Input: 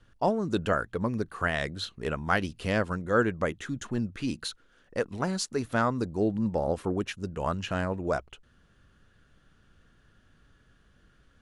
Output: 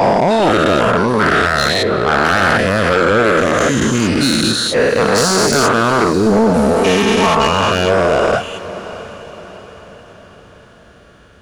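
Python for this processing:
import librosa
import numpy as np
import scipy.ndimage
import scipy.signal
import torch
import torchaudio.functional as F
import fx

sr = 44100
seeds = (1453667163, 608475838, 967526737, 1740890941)

p1 = fx.spec_dilate(x, sr, span_ms=480)
p2 = scipy.signal.sosfilt(scipy.signal.butter(2, 64.0, 'highpass', fs=sr, output='sos'), p1)
p3 = fx.dereverb_blind(p2, sr, rt60_s=0.62)
p4 = fx.lowpass(p3, sr, hz=1500.0, slope=12, at=(1.82, 2.23), fade=0.02)
p5 = fx.comb(p4, sr, ms=4.5, depth=0.92, at=(6.26, 7.47))
p6 = fx.rider(p5, sr, range_db=10, speed_s=0.5)
p7 = p5 + (p6 * librosa.db_to_amplitude(-2.0))
p8 = 10.0 ** (-14.5 / 20.0) * np.tanh(p7 / 10.0 ** (-14.5 / 20.0))
p9 = p8 + fx.echo_diffused(p8, sr, ms=655, feedback_pct=48, wet_db=-15, dry=0)
y = p9 * librosa.db_to_amplitude(7.5)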